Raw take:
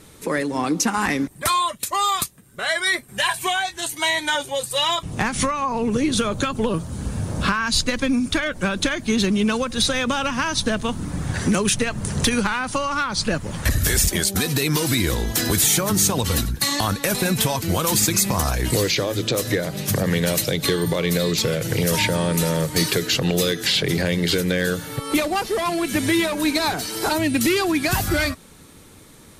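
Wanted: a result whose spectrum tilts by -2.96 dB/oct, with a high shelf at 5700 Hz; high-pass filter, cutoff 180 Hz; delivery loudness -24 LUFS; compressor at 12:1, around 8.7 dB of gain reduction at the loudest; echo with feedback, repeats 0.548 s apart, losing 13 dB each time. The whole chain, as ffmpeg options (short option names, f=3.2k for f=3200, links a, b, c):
-af "highpass=180,highshelf=f=5.7k:g=5.5,acompressor=threshold=-20dB:ratio=12,aecho=1:1:548|1096|1644:0.224|0.0493|0.0108"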